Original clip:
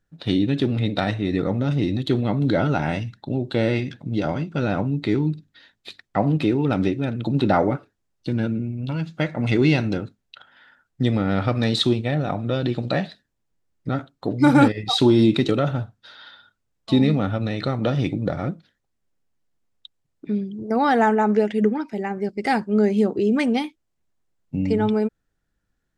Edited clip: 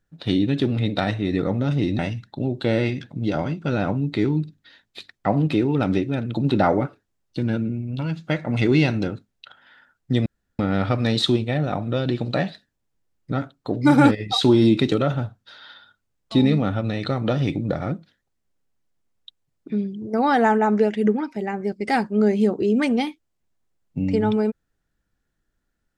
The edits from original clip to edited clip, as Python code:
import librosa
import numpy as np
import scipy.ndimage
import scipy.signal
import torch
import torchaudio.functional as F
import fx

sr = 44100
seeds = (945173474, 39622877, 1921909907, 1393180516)

y = fx.edit(x, sr, fx.cut(start_s=1.99, length_s=0.9),
    fx.insert_room_tone(at_s=11.16, length_s=0.33), tone=tone)